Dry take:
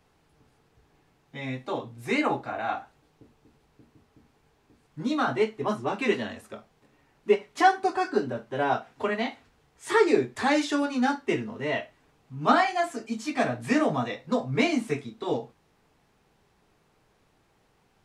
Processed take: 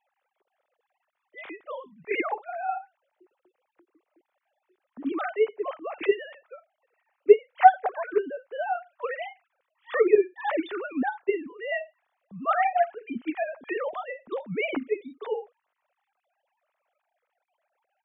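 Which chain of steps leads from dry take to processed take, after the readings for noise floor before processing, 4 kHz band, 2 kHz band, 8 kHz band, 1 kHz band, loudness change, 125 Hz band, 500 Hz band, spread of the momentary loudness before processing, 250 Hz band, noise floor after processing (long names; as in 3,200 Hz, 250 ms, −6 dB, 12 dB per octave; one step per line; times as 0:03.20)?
−67 dBFS, can't be measured, −3.0 dB, below −35 dB, +1.5 dB, 0.0 dB, below −10 dB, +2.0 dB, 13 LU, −6.5 dB, −83 dBFS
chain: three sine waves on the formant tracks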